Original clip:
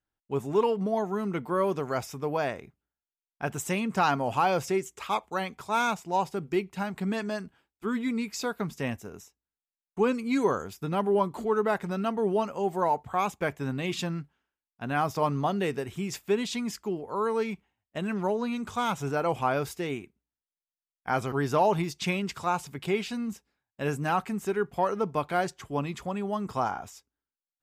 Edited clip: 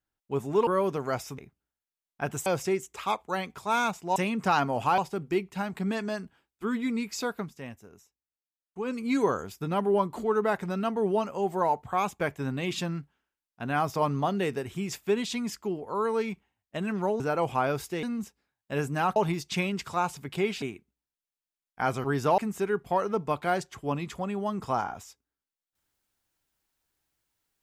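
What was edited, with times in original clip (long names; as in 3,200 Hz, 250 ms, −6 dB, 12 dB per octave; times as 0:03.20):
0:00.67–0:01.50: remove
0:02.21–0:02.59: remove
0:03.67–0:04.49: move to 0:06.19
0:08.55–0:10.22: duck −9.5 dB, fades 0.17 s
0:18.41–0:19.07: remove
0:19.90–0:21.66: swap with 0:23.12–0:24.25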